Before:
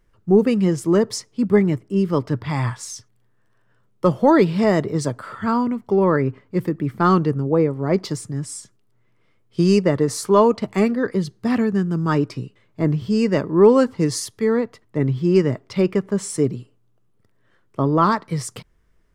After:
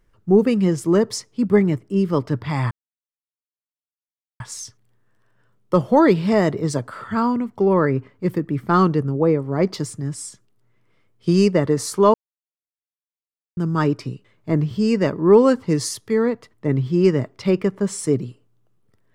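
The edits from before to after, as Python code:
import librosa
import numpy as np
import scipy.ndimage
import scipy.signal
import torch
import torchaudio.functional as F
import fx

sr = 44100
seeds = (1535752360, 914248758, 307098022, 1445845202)

y = fx.edit(x, sr, fx.insert_silence(at_s=2.71, length_s=1.69),
    fx.silence(start_s=10.45, length_s=1.43), tone=tone)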